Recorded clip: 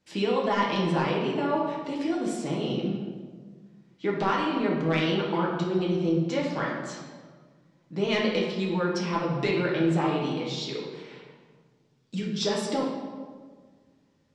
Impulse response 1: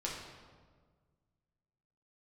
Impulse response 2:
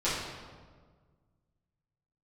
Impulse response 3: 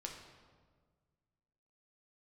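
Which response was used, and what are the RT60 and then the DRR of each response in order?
1; 1.6, 1.6, 1.6 seconds; −4.5, −12.0, 0.5 decibels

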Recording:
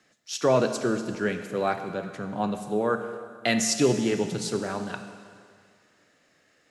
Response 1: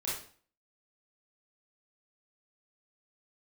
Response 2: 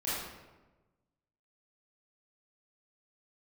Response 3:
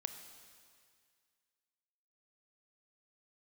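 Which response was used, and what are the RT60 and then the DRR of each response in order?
3; 0.45, 1.2, 2.0 seconds; −7.5, −11.5, 7.5 decibels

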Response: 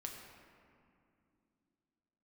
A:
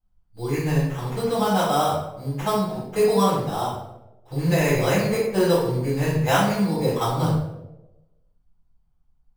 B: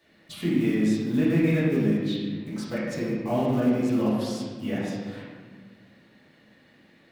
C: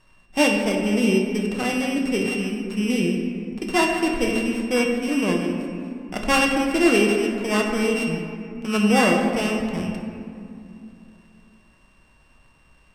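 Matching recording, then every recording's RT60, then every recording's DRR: C; 0.95, 1.6, 2.6 seconds; −10.5, −9.5, 0.5 decibels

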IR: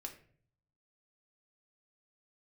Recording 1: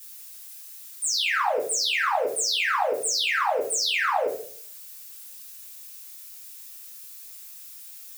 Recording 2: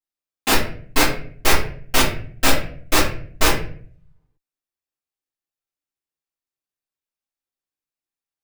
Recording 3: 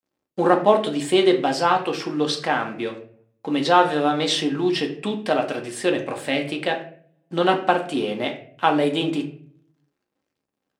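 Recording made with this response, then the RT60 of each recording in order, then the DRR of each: 3; 0.50, 0.50, 0.50 seconds; −7.5, −13.0, 2.5 decibels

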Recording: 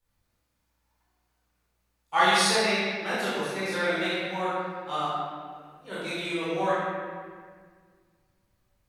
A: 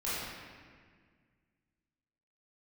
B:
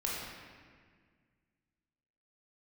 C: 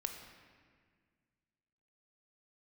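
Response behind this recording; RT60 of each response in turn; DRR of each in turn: A; 1.8, 1.8, 1.8 seconds; −11.0, −4.5, 4.5 decibels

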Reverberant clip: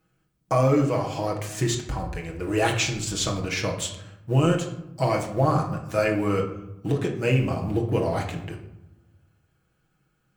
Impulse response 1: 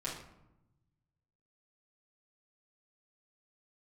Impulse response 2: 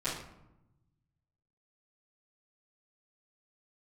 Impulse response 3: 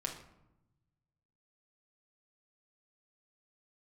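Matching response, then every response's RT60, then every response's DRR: 3; 0.90, 0.90, 0.90 seconds; −7.5, −15.0, −0.5 decibels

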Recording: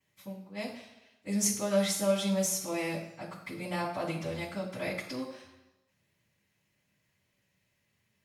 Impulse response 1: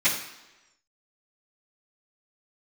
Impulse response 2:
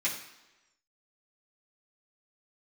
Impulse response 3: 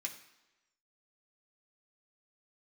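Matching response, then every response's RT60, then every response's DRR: 1; 1.0, 1.0, 1.0 seconds; −18.0, −8.5, 0.5 decibels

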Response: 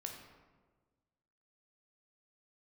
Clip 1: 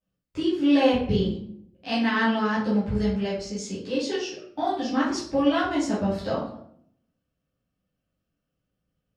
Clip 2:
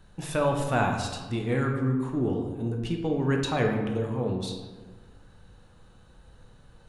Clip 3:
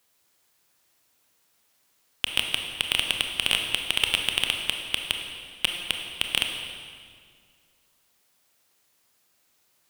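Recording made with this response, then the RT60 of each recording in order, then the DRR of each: 2; 0.65, 1.4, 2.0 seconds; −10.5, 1.5, 3.0 decibels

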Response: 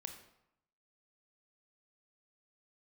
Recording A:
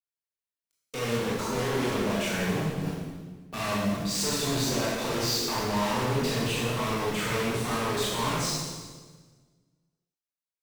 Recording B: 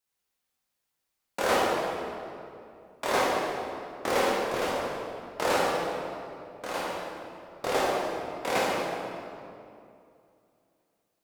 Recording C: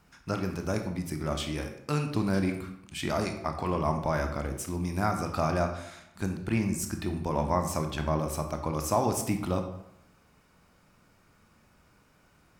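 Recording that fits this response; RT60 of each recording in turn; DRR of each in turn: C; 1.4, 2.6, 0.80 seconds; −6.5, −6.5, 5.0 decibels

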